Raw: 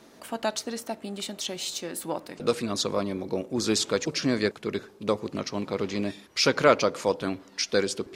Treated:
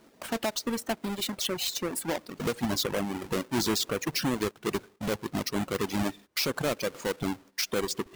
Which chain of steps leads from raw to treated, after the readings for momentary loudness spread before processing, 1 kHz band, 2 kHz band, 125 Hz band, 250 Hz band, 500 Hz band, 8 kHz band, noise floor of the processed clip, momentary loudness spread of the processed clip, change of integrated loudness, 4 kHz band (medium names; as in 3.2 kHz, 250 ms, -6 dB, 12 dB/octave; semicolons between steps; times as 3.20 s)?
10 LU, -3.5 dB, -3.0 dB, 0.0 dB, -1.0 dB, -5.5 dB, -1.0 dB, -60 dBFS, 5 LU, -2.5 dB, -1.5 dB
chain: square wave that keeps the level; reverb removal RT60 1.3 s; gate -47 dBFS, range -10 dB; compression 4:1, threshold -22 dBFS, peak gain reduction 11 dB; peak limiter -20.5 dBFS, peak gain reduction 8.5 dB